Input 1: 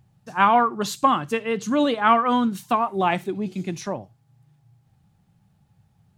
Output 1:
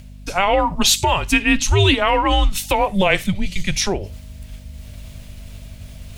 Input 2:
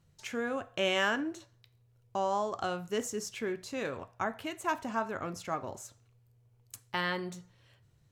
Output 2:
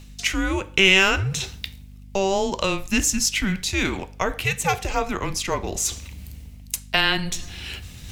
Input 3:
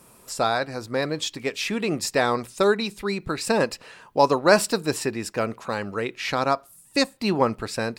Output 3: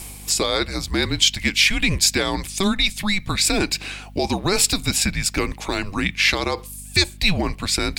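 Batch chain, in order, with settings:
frequency shift -190 Hz; in parallel at -1.5 dB: compressor, threshold -30 dBFS; on the sum: limiter -12 dBFS; reverse; upward compressor, threshold -31 dBFS; reverse; resonant high shelf 1800 Hz +7.5 dB, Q 1.5; hum 50 Hz, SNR 19 dB; normalise peaks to -2 dBFS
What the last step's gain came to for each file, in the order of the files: +5.0, +6.0, +1.0 dB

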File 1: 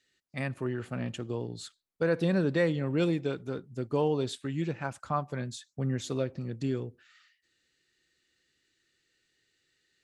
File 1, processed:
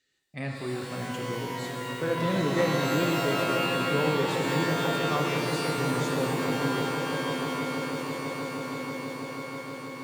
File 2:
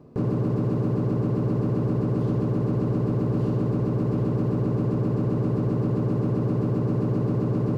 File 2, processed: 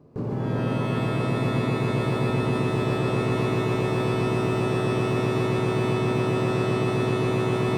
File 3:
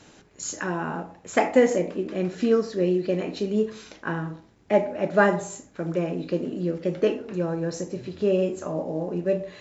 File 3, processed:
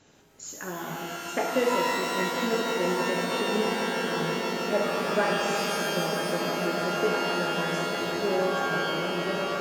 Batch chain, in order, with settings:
swelling echo 0.161 s, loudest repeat 8, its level -12.5 dB; shimmer reverb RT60 2.1 s, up +12 st, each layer -2 dB, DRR 1.5 dB; normalise peaks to -12 dBFS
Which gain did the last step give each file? -2.5, -4.5, -8.5 dB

